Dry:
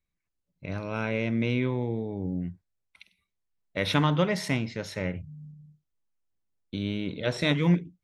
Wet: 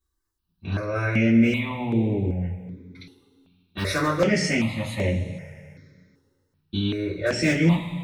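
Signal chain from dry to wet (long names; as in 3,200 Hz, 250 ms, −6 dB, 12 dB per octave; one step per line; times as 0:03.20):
in parallel at −1 dB: brickwall limiter −18 dBFS, peak gain reduction 7.5 dB
on the sum: wave folding −11 dBFS
coupled-rooms reverb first 0.21 s, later 2.2 s, from −20 dB, DRR −7.5 dB
step-sequenced phaser 2.6 Hz 630–5,100 Hz
level −4.5 dB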